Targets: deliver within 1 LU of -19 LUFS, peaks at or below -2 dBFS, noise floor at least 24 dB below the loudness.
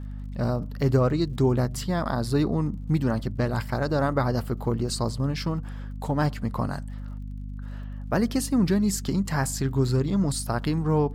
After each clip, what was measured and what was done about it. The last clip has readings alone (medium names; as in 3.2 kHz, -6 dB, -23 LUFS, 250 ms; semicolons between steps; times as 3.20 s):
tick rate 43 per s; hum 50 Hz; highest harmonic 250 Hz; hum level -33 dBFS; loudness -26.0 LUFS; peak level -9.0 dBFS; loudness target -19.0 LUFS
-> de-click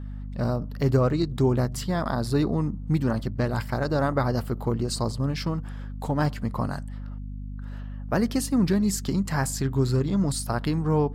tick rate 0.27 per s; hum 50 Hz; highest harmonic 250 Hz; hum level -33 dBFS
-> hum notches 50/100/150/200/250 Hz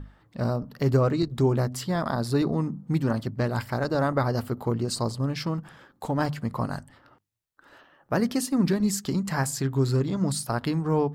hum not found; loudness -26.5 LUFS; peak level -10.0 dBFS; loudness target -19.0 LUFS
-> trim +7.5 dB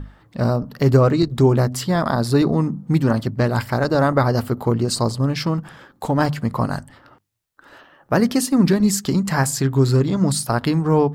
loudness -19.0 LUFS; peak level -2.5 dBFS; noise floor -57 dBFS